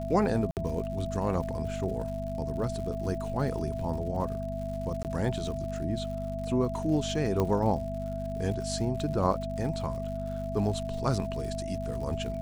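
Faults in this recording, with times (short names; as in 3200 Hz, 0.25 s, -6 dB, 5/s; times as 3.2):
crackle 130/s -39 dBFS
hum 50 Hz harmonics 5 -36 dBFS
tone 660 Hz -35 dBFS
0.51–0.57 gap 58 ms
5.03–5.05 gap 18 ms
7.4 pop -16 dBFS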